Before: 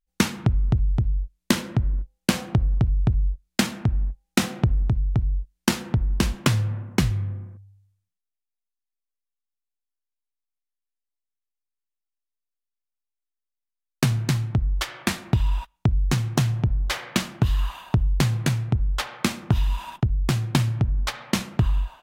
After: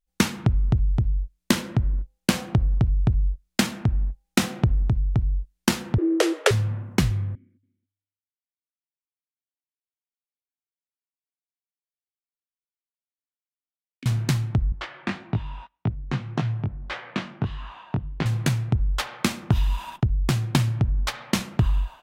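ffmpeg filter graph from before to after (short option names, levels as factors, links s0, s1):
-filter_complex "[0:a]asettb=1/sr,asplit=3[s0][s1][s2];[s0]atrim=end=5.984[s3];[s1]atrim=start=5.98:end=6.51,asetpts=PTS-STARTPTS,afade=t=in:d=0.004:c=qsin,afade=t=out:st=0.526:d=0.004:c=qsin,lowpass=f=12000:w=0.5412,lowpass=f=12000:w=1.3066,equalizer=f=1400:t=o:w=1.8:g=4,afreqshift=280[s4];[s2]atrim=start=6.506[s5];[s3][s4]acrossfade=d=0.004:c1=hsin:c2=qsin[s6];[s6][s5]acrossfade=d=0.004:c1=qsin:c2=hsin,asettb=1/sr,asplit=3[s7][s8][s9];[s7]atrim=end=7.354[s10];[s8]atrim=start=7.35:end=14.06,asetpts=PTS-STARTPTS,afade=t=in:d=0.004:c=qsin,afade=t=out:st=6.706:d=0.004:c=qsin,asplit=3[s11][s12][s13];[s11]bandpass=f=270:t=q:w=8,volume=1[s14];[s12]bandpass=f=2290:t=q:w=8,volume=0.501[s15];[s13]bandpass=f=3010:t=q:w=8,volume=0.355[s16];[s14][s15][s16]amix=inputs=3:normalize=0,acompressor=threshold=0.00794:ratio=2.5:attack=3.2:release=140:knee=1:detection=peak,aecho=1:1:280:0.126,atrim=end_sample=295911[s17];[s9]atrim=start=14.056[s18];[s10][s17]acrossfade=d=0.004:c1=hsin:c2=qsin[s19];[s19][s18]acrossfade=d=0.004:c1=qsin:c2=hsin,asettb=1/sr,asplit=3[s20][s21][s22];[s20]atrim=end=14.724[s23];[s21]atrim=start=14.72:end=18.26,asetpts=PTS-STARTPTS,afade=t=in:d=0.004:c=qsin,afade=t=out:st=3.536:d=0.004:c=qsin,flanger=delay=18:depth=3.5:speed=1.7,highpass=100,lowpass=2800[s24];[s22]atrim=start=18.256[s25];[s23][s24]acrossfade=d=0.004:c1=hsin:c2=qsin[s26];[s26][s25]acrossfade=d=0.004:c1=qsin:c2=hsin"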